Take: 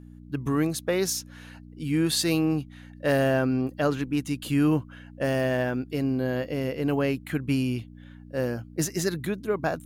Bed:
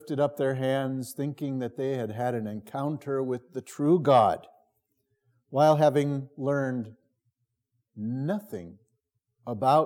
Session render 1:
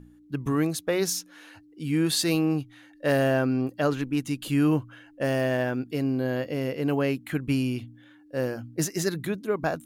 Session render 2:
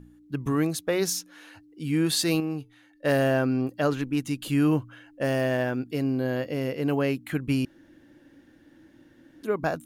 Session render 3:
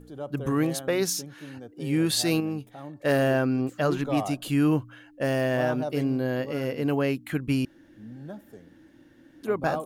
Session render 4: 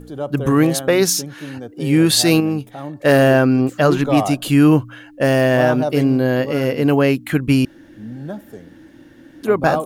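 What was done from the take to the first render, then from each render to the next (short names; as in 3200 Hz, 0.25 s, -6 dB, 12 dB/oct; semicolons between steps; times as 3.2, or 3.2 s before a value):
de-hum 60 Hz, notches 4
2.4–3.05 resonator 440 Hz, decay 0.26 s, mix 50%; 7.65–9.43 room tone
add bed -11 dB
gain +10.5 dB; limiter -2 dBFS, peak gain reduction 0.5 dB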